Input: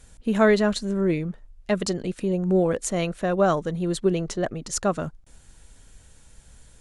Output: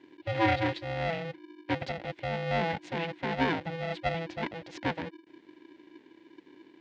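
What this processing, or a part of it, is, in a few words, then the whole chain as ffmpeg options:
ring modulator pedal into a guitar cabinet: -af "aeval=exprs='val(0)*sgn(sin(2*PI*330*n/s))':c=same,highpass=110,equalizer=f=300:t=q:w=4:g=5,equalizer=f=1200:t=q:w=4:g=-10,equalizer=f=2000:t=q:w=4:g=5,lowpass=f=3800:w=0.5412,lowpass=f=3800:w=1.3066,volume=0.422"

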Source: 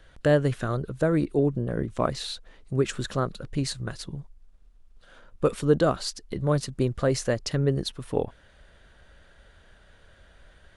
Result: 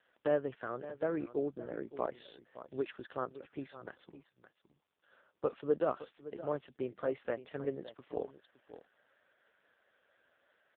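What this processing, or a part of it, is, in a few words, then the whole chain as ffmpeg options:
satellite phone: -filter_complex "[0:a]asplit=3[s0][s1][s2];[s0]afade=t=out:st=1.05:d=0.02[s3];[s1]equalizer=f=92:t=o:w=0.31:g=-3.5,afade=t=in:st=1.05:d=0.02,afade=t=out:st=2.89:d=0.02[s4];[s2]afade=t=in:st=2.89:d=0.02[s5];[s3][s4][s5]amix=inputs=3:normalize=0,highpass=350,lowpass=3200,aecho=1:1:565:0.188,volume=0.422" -ar 8000 -c:a libopencore_amrnb -b:a 5150

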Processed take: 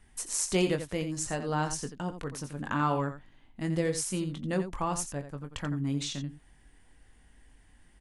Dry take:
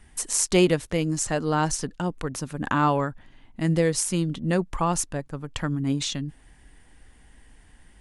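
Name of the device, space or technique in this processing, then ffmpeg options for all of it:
slapback doubling: -filter_complex "[0:a]asplit=3[s0][s1][s2];[s1]adelay=21,volume=0.376[s3];[s2]adelay=86,volume=0.316[s4];[s0][s3][s4]amix=inputs=3:normalize=0,volume=0.422"

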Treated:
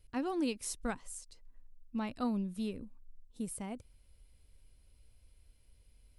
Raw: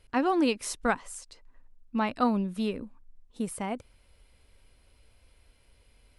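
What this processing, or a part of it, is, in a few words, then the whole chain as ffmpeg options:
smiley-face EQ: -af "lowshelf=f=130:g=7.5,equalizer=f=1200:t=o:w=2.8:g=-6.5,highshelf=f=6600:g=6.5,volume=0.422"

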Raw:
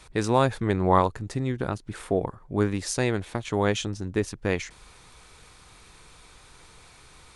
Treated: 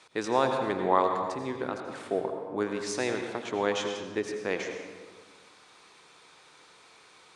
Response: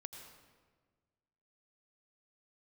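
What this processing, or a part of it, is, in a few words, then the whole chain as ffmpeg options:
supermarket ceiling speaker: -filter_complex "[0:a]highpass=300,lowpass=6900[s0];[1:a]atrim=start_sample=2205[s1];[s0][s1]afir=irnorm=-1:irlink=0,volume=1.33"

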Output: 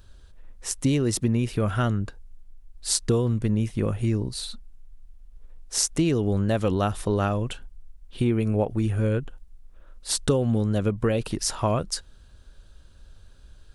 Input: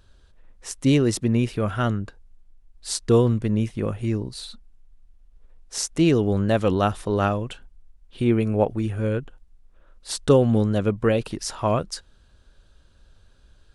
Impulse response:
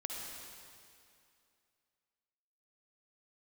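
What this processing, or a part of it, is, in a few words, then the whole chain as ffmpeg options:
ASMR close-microphone chain: -af "lowshelf=f=130:g=5,acompressor=threshold=0.1:ratio=5,highshelf=f=7900:g=7.5,volume=1.12"

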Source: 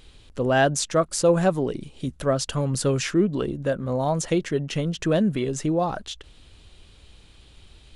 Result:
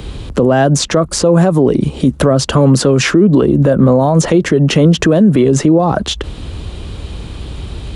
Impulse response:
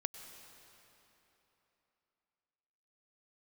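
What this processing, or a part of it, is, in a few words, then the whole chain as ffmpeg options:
mastering chain: -filter_complex "[0:a]highpass=42,equalizer=f=1100:t=o:w=0.65:g=3.5,acrossover=split=97|200|6800[s0][s1][s2][s3];[s0]acompressor=threshold=0.00251:ratio=4[s4];[s1]acompressor=threshold=0.00891:ratio=4[s5];[s2]acompressor=threshold=0.0631:ratio=4[s6];[s3]acompressor=threshold=0.00708:ratio=4[s7];[s4][s5][s6][s7]amix=inputs=4:normalize=0,acompressor=threshold=0.0224:ratio=1.5,tiltshelf=f=790:g=6.5,alimiter=level_in=15.8:limit=0.891:release=50:level=0:latency=1,volume=0.891"

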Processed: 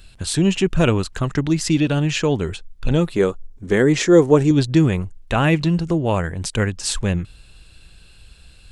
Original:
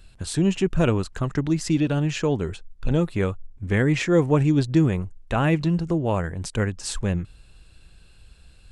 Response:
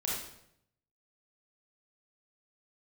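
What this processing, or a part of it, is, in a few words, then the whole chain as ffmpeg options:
presence and air boost: -filter_complex "[0:a]asettb=1/sr,asplit=3[s0][s1][s2];[s0]atrim=end=3.154[s3];[s1]atrim=start=3.15:end=4.51,asetpts=PTS-STARTPTS,afade=t=in:d=0.004:c=qsin,afade=t=out:st=1.356:d=0.004:c=qsin,equalizer=f=100:t=o:w=0.67:g=-11,equalizer=f=400:t=o:w=0.67:g=7,equalizer=f=2500:t=o:w=0.67:g=-7,equalizer=f=6300:t=o:w=0.67:g=4[s4];[s2]atrim=start=4.506[s5];[s3][s4]acrossfade=d=0.004:c1=hsin:c2=qsin[s6];[s6][s5]acrossfade=d=0.004:c1=qsin:c2=hsin,equalizer=f=3300:t=o:w=1.6:g=4.5,highshelf=f=9200:g=6,volume=1.5"

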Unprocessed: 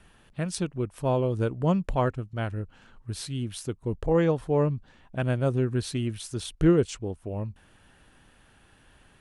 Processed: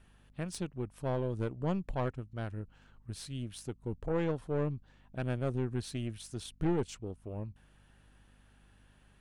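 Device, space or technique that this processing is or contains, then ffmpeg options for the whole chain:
valve amplifier with mains hum: -af "aeval=exprs='(tanh(8.91*val(0)+0.55)-tanh(0.55))/8.91':c=same,aeval=exprs='val(0)+0.00158*(sin(2*PI*50*n/s)+sin(2*PI*2*50*n/s)/2+sin(2*PI*3*50*n/s)/3+sin(2*PI*4*50*n/s)/4+sin(2*PI*5*50*n/s)/5)':c=same,volume=0.501"

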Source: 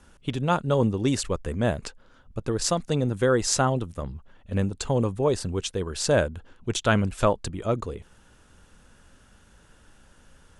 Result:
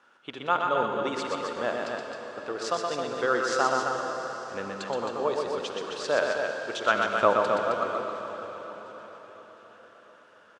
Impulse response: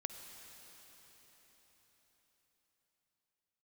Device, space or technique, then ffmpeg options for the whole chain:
station announcement: -filter_complex "[0:a]asettb=1/sr,asplit=3[s0][s1][s2];[s0]atrim=end=7.154[s3];[s1]atrim=start=7.15:end=7.6,asetpts=PTS-STARTPTS,afade=t=in:d=0.004:c=qsin,afade=t=out:st=0.446:d=0.004:c=qsin,lowshelf=f=440:g=10.5[s4];[s2]atrim=start=7.596[s5];[s3][s4]acrossfade=d=0.004:c1=hsin:c2=qsin[s6];[s6][s5]acrossfade=d=0.004:c1=qsin:c2=hsin,highpass=470,lowpass=3800,equalizer=f=1300:t=o:w=0.54:g=6,aecho=1:1:122.4|265.3:0.631|0.501[s7];[1:a]atrim=start_sample=2205[s8];[s7][s8]afir=irnorm=-1:irlink=0,aecho=1:1:708|1416|2124|2832:0.0841|0.0429|0.0219|0.0112"

